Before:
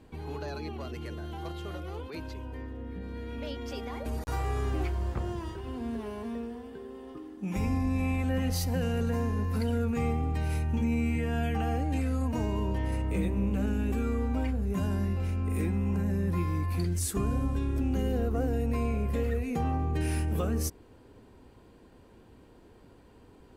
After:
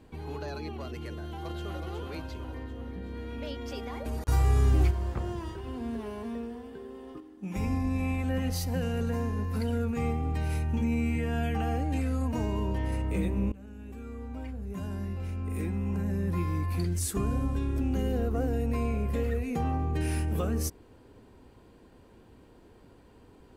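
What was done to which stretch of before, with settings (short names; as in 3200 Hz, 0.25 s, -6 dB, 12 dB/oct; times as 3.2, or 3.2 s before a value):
1.12–1.81 echo throw 0.37 s, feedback 60%, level -5 dB
4.28–4.91 tone controls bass +9 dB, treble +7 dB
7.2–10.25 upward expander, over -38 dBFS
13.52–16.54 fade in, from -20.5 dB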